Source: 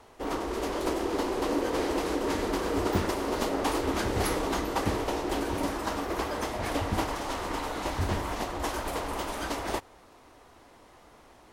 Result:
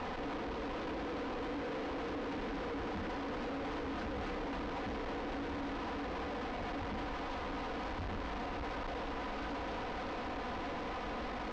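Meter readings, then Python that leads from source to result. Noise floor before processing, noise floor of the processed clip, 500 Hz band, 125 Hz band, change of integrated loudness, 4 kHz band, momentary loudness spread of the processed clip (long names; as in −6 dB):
−55 dBFS, −40 dBFS, −9.5 dB, −10.5 dB, −9.5 dB, −10.0 dB, 1 LU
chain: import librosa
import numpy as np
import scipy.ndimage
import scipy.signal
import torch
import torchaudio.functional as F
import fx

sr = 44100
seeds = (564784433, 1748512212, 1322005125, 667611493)

y = fx.delta_mod(x, sr, bps=32000, step_db=-27.5)
y = fx.high_shelf(y, sr, hz=2800.0, db=-11.5)
y = y + 0.74 * np.pad(y, (int(4.0 * sr / 1000.0), 0))[:len(y)]
y = fx.tube_stage(y, sr, drive_db=42.0, bias=0.65)
y = fx.air_absorb(y, sr, metres=190.0)
y = y * librosa.db_to_amplitude(4.5)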